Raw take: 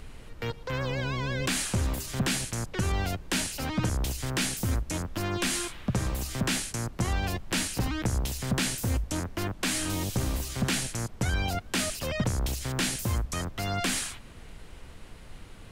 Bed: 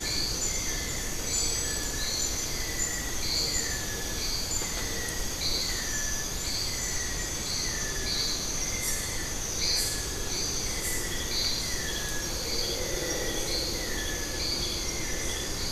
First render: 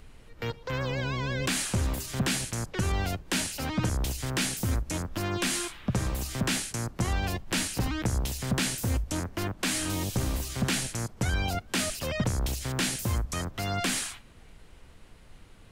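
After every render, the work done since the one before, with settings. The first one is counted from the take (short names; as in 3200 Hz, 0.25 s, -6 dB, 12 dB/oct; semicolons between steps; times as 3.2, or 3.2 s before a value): noise print and reduce 6 dB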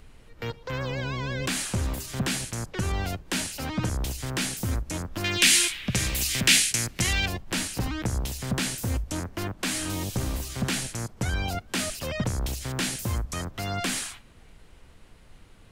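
5.24–7.26 resonant high shelf 1600 Hz +11 dB, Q 1.5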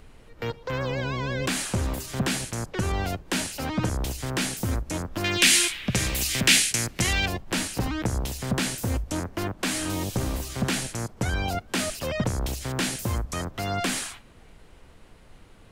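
bell 550 Hz +4 dB 2.9 oct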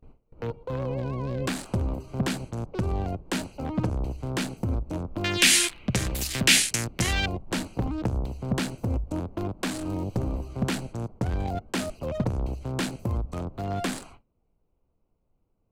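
Wiener smoothing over 25 samples; gate with hold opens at -38 dBFS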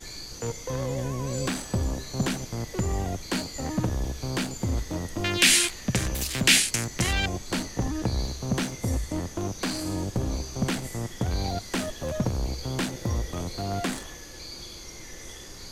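add bed -10.5 dB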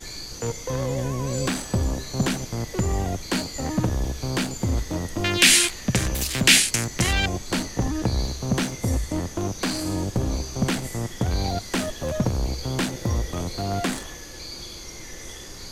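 gain +3.5 dB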